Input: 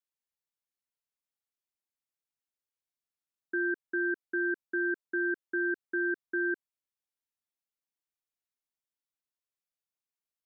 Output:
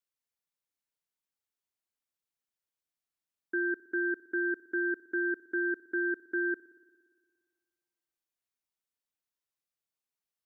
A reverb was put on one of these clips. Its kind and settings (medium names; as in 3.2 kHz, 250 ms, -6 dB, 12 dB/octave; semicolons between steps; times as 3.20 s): spring tank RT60 1.8 s, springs 58 ms, chirp 60 ms, DRR 17 dB